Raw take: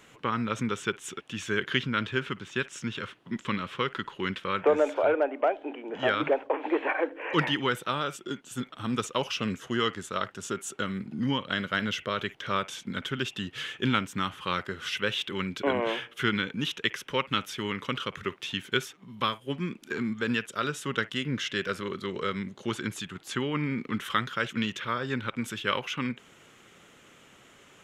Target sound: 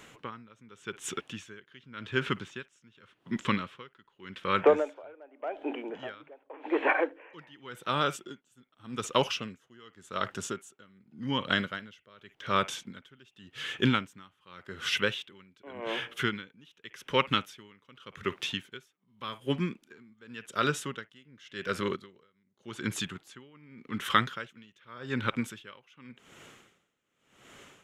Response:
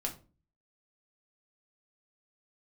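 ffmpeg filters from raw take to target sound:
-filter_complex "[0:a]asplit=3[a][b][c];[a]afade=t=out:st=21.95:d=0.02[d];[b]acompressor=threshold=-41dB:ratio=16,afade=t=in:st=21.95:d=0.02,afade=t=out:st=22.6:d=0.02[e];[c]afade=t=in:st=22.6:d=0.02[f];[d][e][f]amix=inputs=3:normalize=0,aeval=exprs='val(0)*pow(10,-30*(0.5-0.5*cos(2*PI*0.87*n/s))/20)':c=same,volume=3.5dB"

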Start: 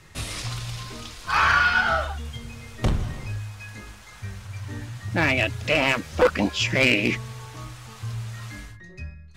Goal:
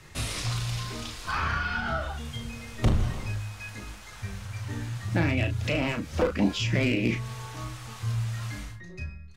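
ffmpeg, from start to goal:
-filter_complex "[0:a]acrossover=split=380[a][b];[b]acompressor=threshold=-31dB:ratio=4[c];[a][c]amix=inputs=2:normalize=0,asplit=2[d][e];[e]adelay=35,volume=-7dB[f];[d][f]amix=inputs=2:normalize=0"

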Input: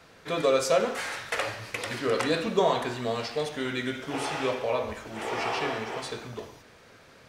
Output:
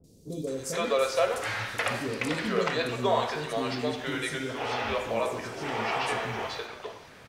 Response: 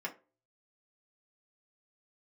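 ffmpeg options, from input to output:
-filter_complex "[0:a]asplit=2[a][b];[b]acompressor=threshold=-35dB:ratio=6,volume=-0.5dB[c];[a][c]amix=inputs=2:normalize=0,acrossover=split=390|5600[d][e][f];[f]adelay=40[g];[e]adelay=470[h];[d][h][g]amix=inputs=3:normalize=0,volume=-1.5dB"

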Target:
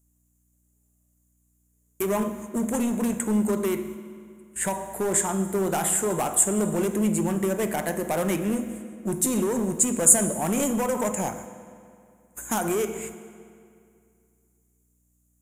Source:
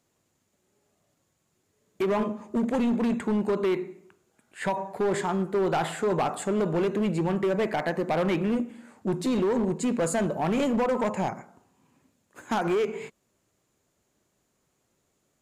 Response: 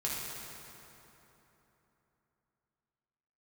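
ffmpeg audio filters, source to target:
-filter_complex "[0:a]aexciter=amount=14.8:drive=4.8:freq=6.7k,aeval=exprs='val(0)+0.00316*(sin(2*PI*60*n/s)+sin(2*PI*2*60*n/s)/2+sin(2*PI*3*60*n/s)/3+sin(2*PI*4*60*n/s)/4+sin(2*PI*5*60*n/s)/5)':c=same,agate=range=-15dB:threshold=-41dB:ratio=16:detection=peak,asplit=2[a][b];[1:a]atrim=start_sample=2205,asetrate=66150,aresample=44100[c];[b][c]afir=irnorm=-1:irlink=0,volume=-9dB[d];[a][d]amix=inputs=2:normalize=0,volume=-2.5dB"

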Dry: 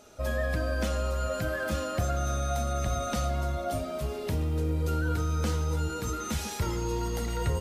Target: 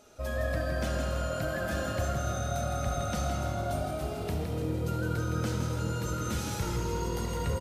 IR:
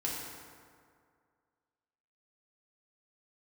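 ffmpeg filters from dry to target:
-filter_complex "[0:a]asplit=7[a][b][c][d][e][f][g];[b]adelay=163,afreqshift=41,volume=-6dB[h];[c]adelay=326,afreqshift=82,volume=-12.6dB[i];[d]adelay=489,afreqshift=123,volume=-19.1dB[j];[e]adelay=652,afreqshift=164,volume=-25.7dB[k];[f]adelay=815,afreqshift=205,volume=-32.2dB[l];[g]adelay=978,afreqshift=246,volume=-38.8dB[m];[a][h][i][j][k][l][m]amix=inputs=7:normalize=0,asplit=2[n][o];[1:a]atrim=start_sample=2205,asetrate=29547,aresample=44100,adelay=70[p];[o][p]afir=irnorm=-1:irlink=0,volume=-13dB[q];[n][q]amix=inputs=2:normalize=0,volume=-3.5dB"

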